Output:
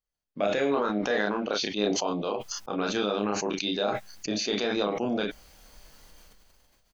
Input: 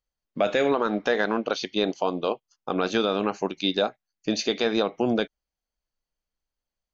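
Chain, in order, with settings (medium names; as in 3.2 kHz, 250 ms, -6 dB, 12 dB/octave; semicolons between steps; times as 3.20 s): on a send: early reflections 29 ms -3.5 dB, 39 ms -10.5 dB; on the sum: decay stretcher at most 24 dB/s; trim -6.5 dB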